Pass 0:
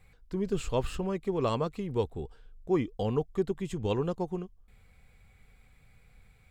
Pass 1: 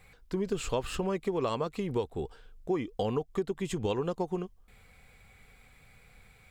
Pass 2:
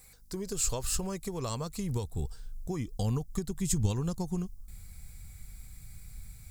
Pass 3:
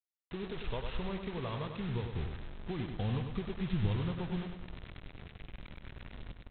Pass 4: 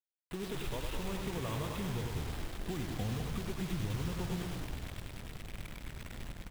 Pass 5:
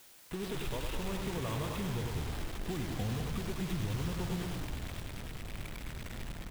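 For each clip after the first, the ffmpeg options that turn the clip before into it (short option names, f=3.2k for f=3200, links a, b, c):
-af "lowshelf=f=210:g=-8.5,acompressor=threshold=-34dB:ratio=6,volume=7dB"
-af "asubboost=boost=11:cutoff=140,aeval=exprs='val(0)+0.000794*(sin(2*PI*50*n/s)+sin(2*PI*2*50*n/s)/2+sin(2*PI*3*50*n/s)/3+sin(2*PI*4*50*n/s)/4+sin(2*PI*5*50*n/s)/5)':c=same,aexciter=amount=8:drive=4.2:freq=4.4k,volume=-5dB"
-af "aresample=8000,acrusher=bits=6:mix=0:aa=0.000001,aresample=44100,aecho=1:1:99|198|297|396|495|594:0.473|0.227|0.109|0.0523|0.0251|0.0121,volume=-4dB"
-filter_complex "[0:a]acompressor=threshold=-37dB:ratio=3,acrusher=bits=7:mix=0:aa=0.000001,asplit=9[a][b][c][d][e][f][g][h][i];[b]adelay=206,afreqshift=-52,volume=-7dB[j];[c]adelay=412,afreqshift=-104,volume=-11.3dB[k];[d]adelay=618,afreqshift=-156,volume=-15.6dB[l];[e]adelay=824,afreqshift=-208,volume=-19.9dB[m];[f]adelay=1030,afreqshift=-260,volume=-24.2dB[n];[g]adelay=1236,afreqshift=-312,volume=-28.5dB[o];[h]adelay=1442,afreqshift=-364,volume=-32.8dB[p];[i]adelay=1648,afreqshift=-416,volume=-37.1dB[q];[a][j][k][l][m][n][o][p][q]amix=inputs=9:normalize=0,volume=2dB"
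-af "aeval=exprs='val(0)+0.5*0.00531*sgn(val(0))':c=same"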